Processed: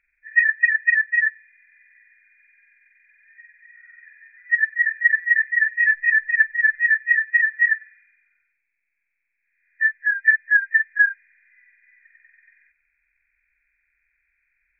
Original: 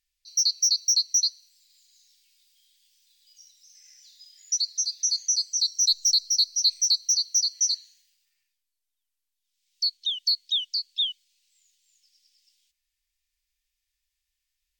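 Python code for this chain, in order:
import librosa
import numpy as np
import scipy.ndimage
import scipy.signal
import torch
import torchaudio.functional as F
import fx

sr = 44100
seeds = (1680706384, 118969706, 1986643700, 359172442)

y = fx.freq_compress(x, sr, knee_hz=1300.0, ratio=4.0)
y = fx.rider(y, sr, range_db=10, speed_s=0.5)
y = F.gain(torch.from_numpy(y), 2.5).numpy()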